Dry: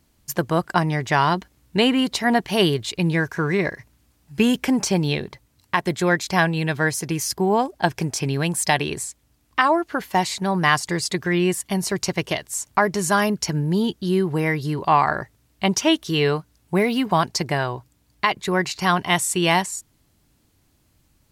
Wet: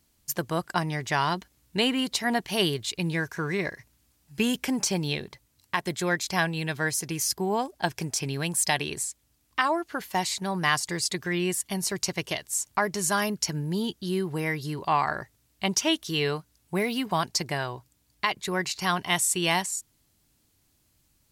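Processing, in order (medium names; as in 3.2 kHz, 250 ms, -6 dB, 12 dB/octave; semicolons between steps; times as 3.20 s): treble shelf 2.8 kHz +8 dB; trim -8 dB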